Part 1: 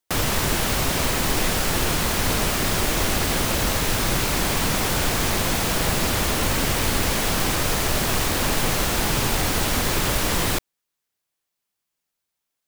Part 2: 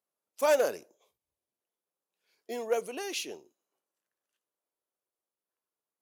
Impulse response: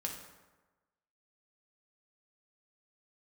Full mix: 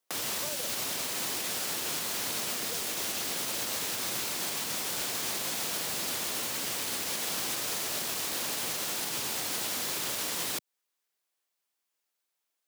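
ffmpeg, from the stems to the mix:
-filter_complex "[0:a]highpass=320,volume=-1.5dB[link_01];[1:a]volume=-1.5dB[link_02];[link_01][link_02]amix=inputs=2:normalize=0,acrossover=split=180|3000[link_03][link_04][link_05];[link_04]acompressor=threshold=-34dB:ratio=6[link_06];[link_03][link_06][link_05]amix=inputs=3:normalize=0,alimiter=limit=-23dB:level=0:latency=1:release=147"

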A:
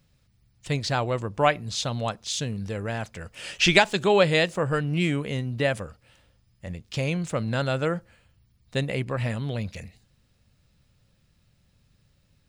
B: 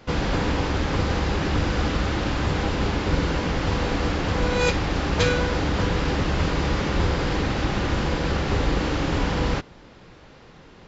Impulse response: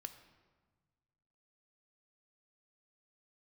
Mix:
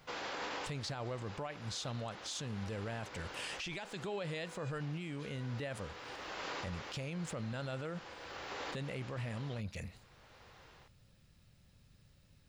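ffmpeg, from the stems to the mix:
-filter_complex "[0:a]alimiter=limit=-11.5dB:level=0:latency=1:release=321,acompressor=threshold=-39dB:ratio=2,volume=-1dB,asplit=2[link_01][link_02];[1:a]dynaudnorm=framelen=210:gausssize=3:maxgain=4dB,highpass=580,alimiter=limit=-17dB:level=0:latency=1:release=138,volume=-11dB[link_03];[link_02]apad=whole_len=479726[link_04];[link_03][link_04]sidechaincompress=threshold=-46dB:ratio=8:attack=22:release=890[link_05];[link_01][link_05]amix=inputs=2:normalize=0,alimiter=level_in=8.5dB:limit=-24dB:level=0:latency=1:release=29,volume=-8.5dB"

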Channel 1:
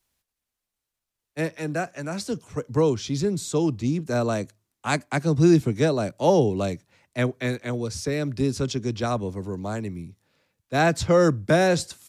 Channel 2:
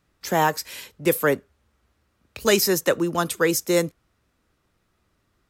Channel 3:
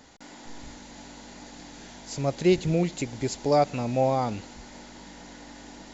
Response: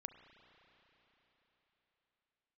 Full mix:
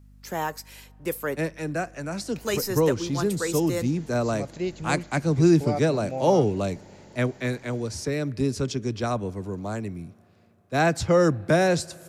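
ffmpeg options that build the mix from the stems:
-filter_complex "[0:a]volume=-2.5dB,asplit=2[link_01][link_02];[link_02]volume=-9.5dB[link_03];[1:a]aeval=exprs='val(0)+0.00891*(sin(2*PI*50*n/s)+sin(2*PI*2*50*n/s)/2+sin(2*PI*3*50*n/s)/3+sin(2*PI*4*50*n/s)/4+sin(2*PI*5*50*n/s)/5)':channel_layout=same,volume=-9.5dB,asplit=2[link_04][link_05];[link_05]volume=-16.5dB[link_06];[2:a]adelay=2150,volume=-8.5dB[link_07];[3:a]atrim=start_sample=2205[link_08];[link_03][link_06]amix=inputs=2:normalize=0[link_09];[link_09][link_08]afir=irnorm=-1:irlink=0[link_10];[link_01][link_04][link_07][link_10]amix=inputs=4:normalize=0,equalizer=frequency=3500:width_type=o:width=0.34:gain=-3"

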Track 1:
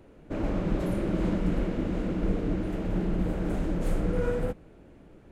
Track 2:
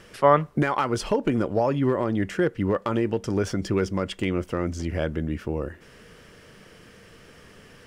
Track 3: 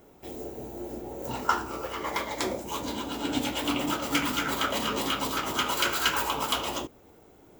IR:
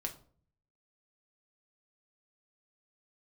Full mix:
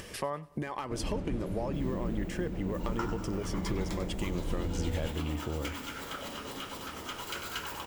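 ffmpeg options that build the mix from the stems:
-filter_complex "[0:a]acrossover=split=270|3000[link_01][link_02][link_03];[link_02]acompressor=threshold=-37dB:ratio=6[link_04];[link_01][link_04][link_03]amix=inputs=3:normalize=0,adelay=600,volume=-7.5dB[link_05];[1:a]acompressor=threshold=-33dB:ratio=5,highshelf=frequency=6300:gain=8,bandreject=frequency=1400:width=6.4,volume=-0.5dB,asplit=2[link_06][link_07];[link_07]volume=-23dB[link_08];[2:a]adelay=1500,volume=-13dB,asplit=2[link_09][link_10];[link_10]volume=-9dB[link_11];[link_08][link_11]amix=inputs=2:normalize=0,aecho=0:1:96|192|288|384|480|576|672:1|0.5|0.25|0.125|0.0625|0.0312|0.0156[link_12];[link_05][link_06][link_09][link_12]amix=inputs=4:normalize=0,equalizer=frequency=76:width=5.1:gain=8.5,acompressor=mode=upward:threshold=-41dB:ratio=2.5"

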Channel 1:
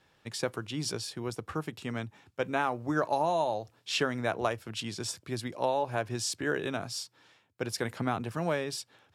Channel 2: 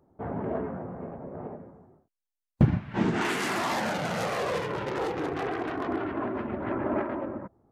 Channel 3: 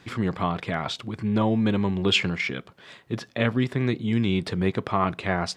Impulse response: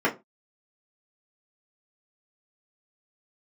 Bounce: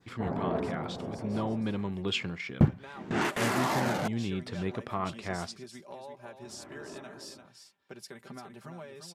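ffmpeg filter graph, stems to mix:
-filter_complex "[0:a]aecho=1:1:5.1:0.73,acompressor=threshold=-33dB:ratio=5,adelay=300,volume=-9.5dB,afade=type=in:start_time=2.69:duration=0.25:silence=0.334965,asplit=2[link_01][link_02];[link_02]volume=-8dB[link_03];[1:a]highshelf=frequency=12000:gain=7,bandreject=frequency=60:width_type=h:width=6,bandreject=frequency=120:width_type=h:width=6,volume=-0.5dB,asplit=3[link_04][link_05][link_06];[link_04]atrim=end=4.08,asetpts=PTS-STARTPTS,afade=type=out:start_time=4.076:duration=0.004:curve=hsin[link_07];[link_05]atrim=start=4.08:end=6.42,asetpts=PTS-STARTPTS,volume=0[link_08];[link_06]atrim=start=6.42,asetpts=PTS-STARTPTS,afade=type=in:duration=0.004:curve=hsin[link_09];[link_07][link_08][link_09]concat=n=3:v=0:a=1[link_10];[2:a]volume=-9.5dB,asplit=2[link_11][link_12];[link_12]apad=whole_len=340028[link_13];[link_10][link_13]sidechaingate=range=-19dB:threshold=-50dB:ratio=16:detection=peak[link_14];[link_03]aecho=0:1:345:1[link_15];[link_01][link_14][link_11][link_15]amix=inputs=4:normalize=0,adynamicequalizer=threshold=0.00562:dfrequency=2800:dqfactor=0.92:tfrequency=2800:tqfactor=0.92:attack=5:release=100:ratio=0.375:range=2:mode=cutabove:tftype=bell"

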